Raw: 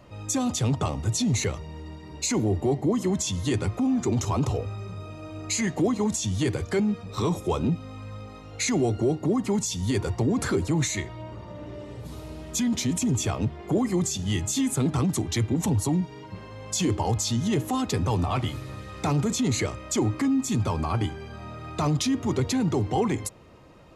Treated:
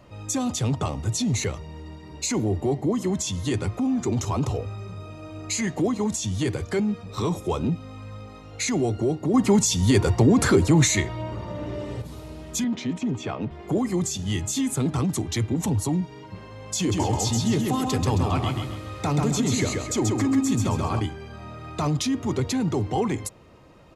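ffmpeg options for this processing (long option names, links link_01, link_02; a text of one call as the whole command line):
ffmpeg -i in.wav -filter_complex "[0:a]asettb=1/sr,asplit=3[link_01][link_02][link_03];[link_01]atrim=end=12.644[link_04];[link_02]atrim=start=12.64:end=13.51,asetpts=PTS-STARTPTS,afade=type=in:duration=0.004:curve=qsin,afade=type=out:start_time=0.866:duration=0.004:curve=qsin,highpass=160,lowpass=3000[link_05];[link_03]atrim=start=13.506[link_06];[link_04][link_05]acrossfade=duration=0.004:curve1=hsin:curve2=qsin[link_07];[link_07][link_06]acrossfade=duration=0.004:curve1=qsin:curve2=hsin,asplit=3[link_08][link_09][link_10];[link_08]afade=type=out:start_time=16.91:duration=0.02[link_11];[link_09]aecho=1:1:134|268|402|536|670:0.708|0.276|0.108|0.042|0.0164,afade=type=in:start_time=16.91:duration=0.02,afade=type=out:start_time=20.99:duration=0.02[link_12];[link_10]afade=type=in:start_time=20.99:duration=0.02[link_13];[link_11][link_12][link_13]amix=inputs=3:normalize=0,asplit=3[link_14][link_15][link_16];[link_14]atrim=end=9.342[link_17];[link_15]atrim=start=9.338:end=12.022,asetpts=PTS-STARTPTS,volume=7dB[link_18];[link_16]atrim=start=12.018[link_19];[link_17][link_18]acrossfade=duration=0.004:curve1=hsin:curve2=hsin[link_20];[link_20][link_19]acrossfade=duration=0.004:curve1=hsin:curve2=hsin" out.wav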